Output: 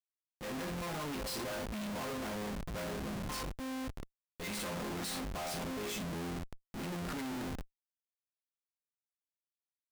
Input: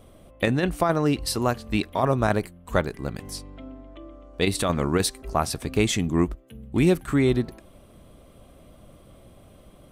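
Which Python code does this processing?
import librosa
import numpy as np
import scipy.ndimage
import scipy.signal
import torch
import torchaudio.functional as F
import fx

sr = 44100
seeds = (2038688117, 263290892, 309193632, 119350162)

y = fx.resonator_bank(x, sr, root=53, chord='minor', decay_s=0.41)
y = fx.schmitt(y, sr, flips_db=-54.5)
y = fx.transient(y, sr, attack_db=-5, sustain_db=1)
y = y * 10.0 ** (5.0 / 20.0)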